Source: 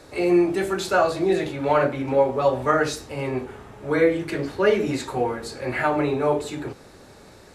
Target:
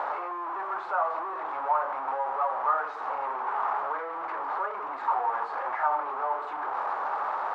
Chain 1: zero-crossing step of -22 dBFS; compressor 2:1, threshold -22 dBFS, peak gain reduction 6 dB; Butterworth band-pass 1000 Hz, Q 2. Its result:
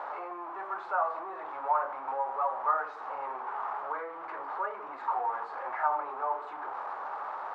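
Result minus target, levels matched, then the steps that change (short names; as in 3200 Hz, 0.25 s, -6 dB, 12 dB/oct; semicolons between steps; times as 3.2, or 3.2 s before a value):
zero-crossing step: distortion -6 dB
change: zero-crossing step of -12 dBFS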